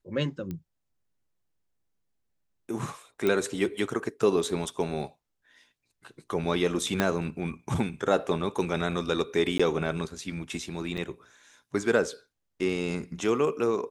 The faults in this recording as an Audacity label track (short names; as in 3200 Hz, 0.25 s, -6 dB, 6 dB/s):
0.510000	0.510000	pop -23 dBFS
3.270000	3.270000	pop -14 dBFS
7.000000	7.000000	pop -10 dBFS
9.580000	9.600000	gap 15 ms
10.970000	10.980000	gap 7.1 ms